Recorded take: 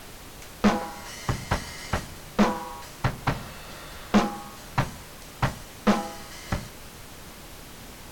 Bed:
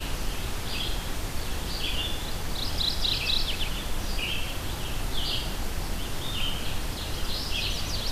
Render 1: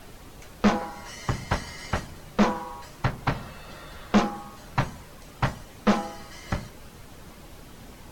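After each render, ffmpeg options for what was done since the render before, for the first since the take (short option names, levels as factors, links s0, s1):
-af "afftdn=nr=7:nf=-44"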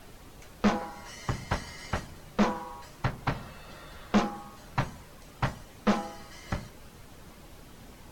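-af "volume=0.631"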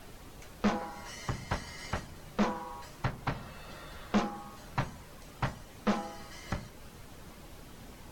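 -af "alimiter=limit=0.0944:level=0:latency=1:release=332"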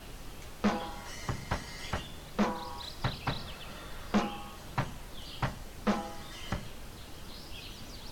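-filter_complex "[1:a]volume=0.141[s0];[0:a][s0]amix=inputs=2:normalize=0"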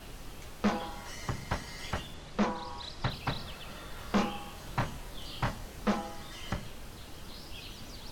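-filter_complex "[0:a]asettb=1/sr,asplit=3[s0][s1][s2];[s0]atrim=end=2.144[s3];[s1]atrim=start=2.14:end=3.1,asetpts=PTS-STARTPTS,afade=t=in:d=0.004:c=qsin,afade=t=out:st=0.956:d=0.004:c=qsin,lowpass=7700[s4];[s2]atrim=start=3.096[s5];[s3][s4]acrossfade=d=0.004:c1=hsin:c2=qsin[s6];[s6][s5]acrossfade=d=0.004:c1=qsin:c2=hsin,asettb=1/sr,asplit=3[s7][s8][s9];[s7]atrim=end=3.944[s10];[s8]atrim=start=3.94:end=5.87,asetpts=PTS-STARTPTS,afade=t=in:d=0.004:c=qsin,afade=t=out:st=1.926:d=0.004:c=qsin,asplit=2[s11][s12];[s12]adelay=26,volume=0.631[s13];[s11][s13]amix=inputs=2:normalize=0,atrim=end_sample=85113[s14];[s9]atrim=start=5.866[s15];[s10][s14]acrossfade=d=0.004:c1=hsin:c2=qsin[s16];[s16][s15]acrossfade=d=0.004:c1=qsin:c2=hsin"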